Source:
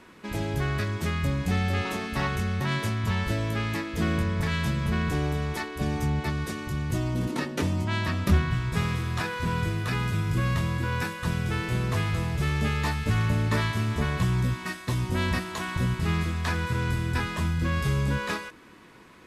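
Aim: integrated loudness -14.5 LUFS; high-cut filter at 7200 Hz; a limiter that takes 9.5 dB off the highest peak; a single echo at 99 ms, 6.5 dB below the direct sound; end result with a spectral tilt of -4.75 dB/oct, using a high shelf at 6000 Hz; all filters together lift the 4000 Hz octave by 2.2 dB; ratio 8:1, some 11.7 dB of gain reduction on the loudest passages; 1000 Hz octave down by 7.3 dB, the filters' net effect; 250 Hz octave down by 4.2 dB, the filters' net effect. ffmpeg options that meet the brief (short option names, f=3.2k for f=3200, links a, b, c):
-af "lowpass=7.2k,equalizer=f=250:t=o:g=-6.5,equalizer=f=1k:t=o:g=-9,equalizer=f=4k:t=o:g=5,highshelf=f=6k:g=-3.5,acompressor=threshold=-28dB:ratio=8,alimiter=level_in=5dB:limit=-24dB:level=0:latency=1,volume=-5dB,aecho=1:1:99:0.473,volume=22dB"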